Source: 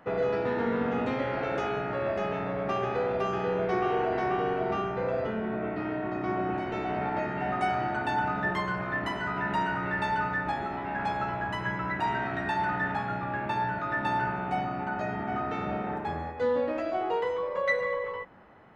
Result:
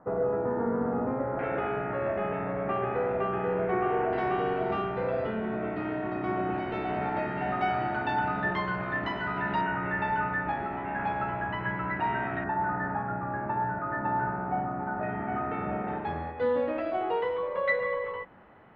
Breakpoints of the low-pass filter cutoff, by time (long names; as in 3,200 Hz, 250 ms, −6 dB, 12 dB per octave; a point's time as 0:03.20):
low-pass filter 24 dB per octave
1,300 Hz
from 0:01.39 2,400 Hz
from 0:04.13 4,200 Hz
from 0:09.61 2,800 Hz
from 0:12.44 1,600 Hz
from 0:15.03 2,400 Hz
from 0:15.88 3,700 Hz